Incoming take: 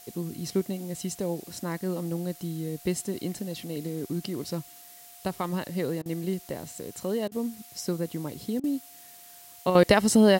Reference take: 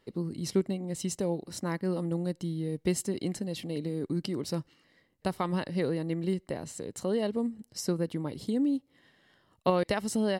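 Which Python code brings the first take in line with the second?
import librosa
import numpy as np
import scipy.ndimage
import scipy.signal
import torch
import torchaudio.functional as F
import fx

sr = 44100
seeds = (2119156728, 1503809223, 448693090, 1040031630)

y = fx.notch(x, sr, hz=710.0, q=30.0)
y = fx.fix_interpolate(y, sr, at_s=(6.02, 7.28, 8.6), length_ms=36.0)
y = fx.noise_reduce(y, sr, print_start_s=9.16, print_end_s=9.66, reduce_db=17.0)
y = fx.gain(y, sr, db=fx.steps((0.0, 0.0), (9.75, -10.0)))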